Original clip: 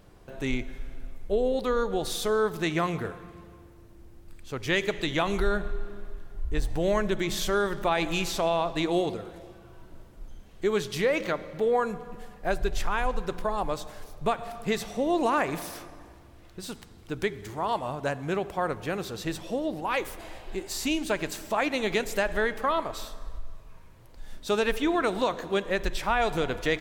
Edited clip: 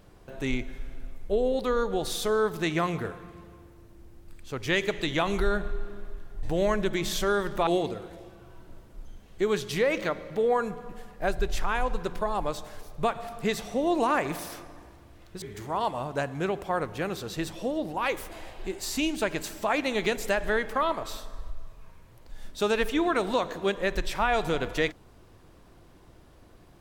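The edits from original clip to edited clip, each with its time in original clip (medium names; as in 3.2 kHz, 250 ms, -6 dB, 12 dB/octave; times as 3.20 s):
6.43–6.69 s: delete
7.93–8.90 s: delete
16.65–17.30 s: delete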